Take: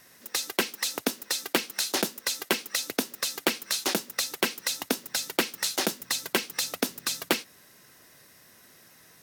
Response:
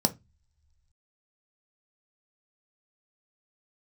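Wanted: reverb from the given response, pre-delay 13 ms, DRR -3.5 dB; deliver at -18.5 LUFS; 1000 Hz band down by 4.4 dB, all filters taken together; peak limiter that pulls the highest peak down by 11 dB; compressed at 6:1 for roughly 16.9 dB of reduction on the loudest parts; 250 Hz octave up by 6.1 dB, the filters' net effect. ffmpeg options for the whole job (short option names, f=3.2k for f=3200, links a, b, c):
-filter_complex "[0:a]equalizer=f=250:t=o:g=8,equalizer=f=1k:t=o:g=-6.5,acompressor=threshold=-38dB:ratio=6,alimiter=level_in=3dB:limit=-24dB:level=0:latency=1,volume=-3dB,asplit=2[a][b];[1:a]atrim=start_sample=2205,adelay=13[c];[b][c]afir=irnorm=-1:irlink=0,volume=-5.5dB[d];[a][d]amix=inputs=2:normalize=0,volume=18.5dB"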